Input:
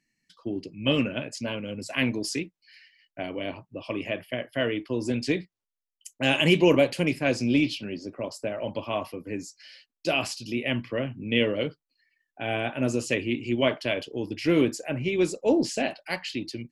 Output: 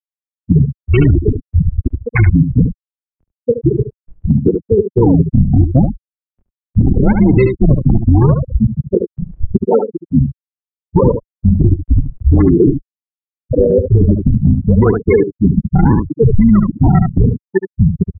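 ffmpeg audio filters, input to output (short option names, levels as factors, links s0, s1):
-filter_complex "[0:a]asetrate=40517,aresample=44100,aeval=exprs='val(0)+0.0112*sin(2*PI*1100*n/s)':c=same,acrusher=samples=42:mix=1:aa=0.000001:lfo=1:lforange=67.2:lforate=0.78,afftfilt=real='re*gte(hypot(re,im),0.178)':imag='im*gte(hypot(re,im),0.178)':win_size=1024:overlap=0.75,acompressor=threshold=0.0447:ratio=12,highpass=f=160:t=q:w=0.5412,highpass=f=160:t=q:w=1.307,lowpass=f=3400:t=q:w=0.5176,lowpass=f=3400:t=q:w=0.7071,lowpass=f=3400:t=q:w=1.932,afreqshift=-130,adynamicequalizer=threshold=0.00251:dfrequency=760:dqfactor=0.96:tfrequency=760:tqfactor=0.96:attack=5:release=100:ratio=0.375:range=4:mode=cutabove:tftype=bell,asplit=2[s0][s1];[s1]aecho=0:1:72:0.266[s2];[s0][s2]amix=inputs=2:normalize=0,asplit=2[s3][s4];[s4]asetrate=22050,aresample=44100,atempo=2,volume=0.282[s5];[s3][s5]amix=inputs=2:normalize=0,alimiter=level_in=28.2:limit=0.891:release=50:level=0:latency=1,volume=0.891"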